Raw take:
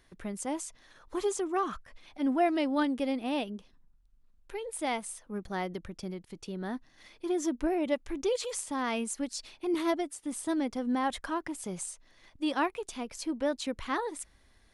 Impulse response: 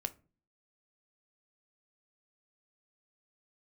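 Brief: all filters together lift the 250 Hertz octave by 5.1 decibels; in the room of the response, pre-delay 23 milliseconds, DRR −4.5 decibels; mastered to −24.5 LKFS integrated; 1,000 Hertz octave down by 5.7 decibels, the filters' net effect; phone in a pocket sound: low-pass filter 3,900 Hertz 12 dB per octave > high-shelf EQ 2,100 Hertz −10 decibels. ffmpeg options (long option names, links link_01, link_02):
-filter_complex "[0:a]equalizer=frequency=250:width_type=o:gain=7,equalizer=frequency=1000:width_type=o:gain=-6.5,asplit=2[link_01][link_02];[1:a]atrim=start_sample=2205,adelay=23[link_03];[link_02][link_03]afir=irnorm=-1:irlink=0,volume=5dB[link_04];[link_01][link_04]amix=inputs=2:normalize=0,lowpass=3900,highshelf=frequency=2100:gain=-10,volume=1dB"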